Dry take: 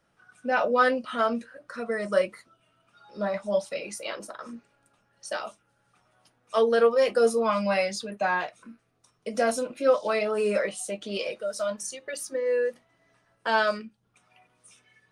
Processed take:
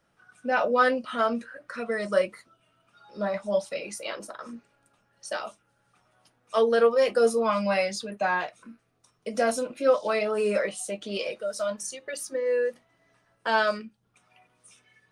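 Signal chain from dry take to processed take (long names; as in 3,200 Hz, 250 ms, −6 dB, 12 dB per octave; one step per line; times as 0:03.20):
0:01.38–0:02.11: parametric band 1,200 Hz → 4,500 Hz +7 dB 0.81 octaves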